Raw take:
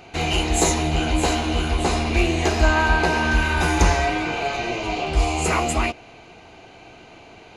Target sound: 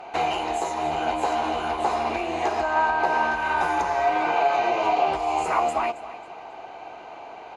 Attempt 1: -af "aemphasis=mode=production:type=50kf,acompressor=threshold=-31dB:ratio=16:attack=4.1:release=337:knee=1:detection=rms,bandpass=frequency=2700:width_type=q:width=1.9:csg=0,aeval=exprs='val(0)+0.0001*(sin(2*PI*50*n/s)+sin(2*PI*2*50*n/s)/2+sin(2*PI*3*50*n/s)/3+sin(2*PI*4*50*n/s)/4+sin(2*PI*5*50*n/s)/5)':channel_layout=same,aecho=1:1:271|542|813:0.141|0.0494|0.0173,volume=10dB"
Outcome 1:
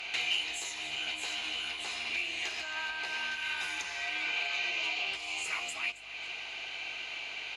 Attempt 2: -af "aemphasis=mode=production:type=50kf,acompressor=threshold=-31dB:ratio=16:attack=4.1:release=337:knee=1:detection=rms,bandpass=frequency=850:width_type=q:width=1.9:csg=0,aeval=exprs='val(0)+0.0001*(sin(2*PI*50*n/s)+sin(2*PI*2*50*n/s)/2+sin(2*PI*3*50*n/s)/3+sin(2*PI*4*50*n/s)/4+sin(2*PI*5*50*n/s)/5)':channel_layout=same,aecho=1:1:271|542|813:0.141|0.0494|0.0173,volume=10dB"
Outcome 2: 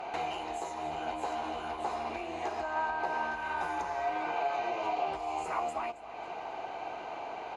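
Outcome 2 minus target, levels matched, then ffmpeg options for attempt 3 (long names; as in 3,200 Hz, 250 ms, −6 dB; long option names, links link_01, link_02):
downward compressor: peak gain reduction +11 dB
-af "aemphasis=mode=production:type=50kf,acompressor=threshold=-19.5dB:ratio=16:attack=4.1:release=337:knee=1:detection=rms,bandpass=frequency=850:width_type=q:width=1.9:csg=0,aeval=exprs='val(0)+0.0001*(sin(2*PI*50*n/s)+sin(2*PI*2*50*n/s)/2+sin(2*PI*3*50*n/s)/3+sin(2*PI*4*50*n/s)/4+sin(2*PI*5*50*n/s)/5)':channel_layout=same,aecho=1:1:271|542|813:0.141|0.0494|0.0173,volume=10dB"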